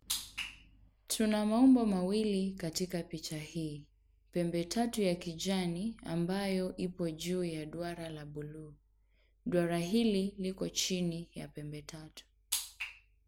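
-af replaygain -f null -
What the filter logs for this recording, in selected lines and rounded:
track_gain = +14.8 dB
track_peak = 0.120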